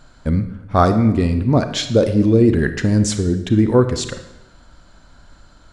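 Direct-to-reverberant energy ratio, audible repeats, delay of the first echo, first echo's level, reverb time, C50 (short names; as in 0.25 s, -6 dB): 8.5 dB, none, none, none, 0.95 s, 10.0 dB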